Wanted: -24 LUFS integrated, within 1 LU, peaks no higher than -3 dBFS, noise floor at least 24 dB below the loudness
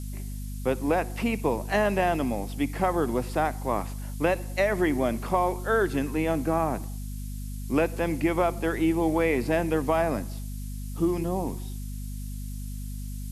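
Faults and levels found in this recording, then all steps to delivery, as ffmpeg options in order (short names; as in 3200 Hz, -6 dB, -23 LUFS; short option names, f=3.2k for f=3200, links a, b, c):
hum 50 Hz; harmonics up to 250 Hz; hum level -32 dBFS; noise floor -35 dBFS; noise floor target -52 dBFS; loudness -27.5 LUFS; peak -10.5 dBFS; loudness target -24.0 LUFS
-> -af "bandreject=f=50:t=h:w=4,bandreject=f=100:t=h:w=4,bandreject=f=150:t=h:w=4,bandreject=f=200:t=h:w=4,bandreject=f=250:t=h:w=4"
-af "afftdn=nr=17:nf=-35"
-af "volume=3.5dB"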